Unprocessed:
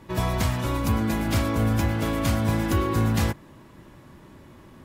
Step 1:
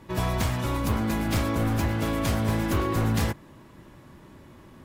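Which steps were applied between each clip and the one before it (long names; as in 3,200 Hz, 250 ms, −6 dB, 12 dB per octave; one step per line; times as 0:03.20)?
wavefolder on the positive side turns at −19.5 dBFS
level −1 dB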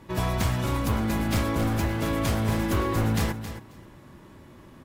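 repeating echo 269 ms, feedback 15%, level −11 dB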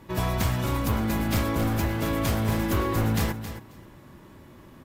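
parametric band 14,000 Hz +8 dB 0.2 octaves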